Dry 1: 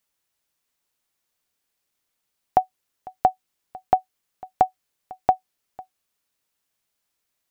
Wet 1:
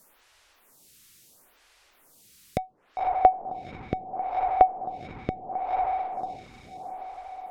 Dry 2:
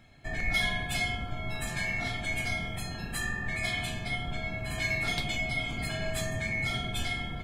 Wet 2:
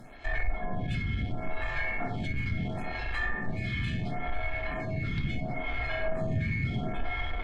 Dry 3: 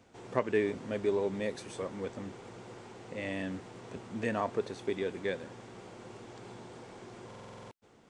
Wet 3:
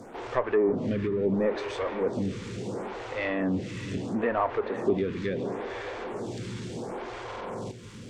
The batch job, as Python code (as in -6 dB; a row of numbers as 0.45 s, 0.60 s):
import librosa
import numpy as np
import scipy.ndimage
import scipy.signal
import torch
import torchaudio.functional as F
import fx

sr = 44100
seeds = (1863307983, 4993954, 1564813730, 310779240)

y = fx.low_shelf(x, sr, hz=140.0, db=4.0)
y = fx.echo_diffused(y, sr, ms=543, feedback_pct=44, wet_db=-13)
y = fx.power_curve(y, sr, exponent=0.7)
y = fx.env_lowpass_down(y, sr, base_hz=780.0, full_db=-20.5)
y = fx.stagger_phaser(y, sr, hz=0.73)
y = y * 10.0 ** (-30 / 20.0) / np.sqrt(np.mean(np.square(y)))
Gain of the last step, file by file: +3.0 dB, +1.0 dB, +4.5 dB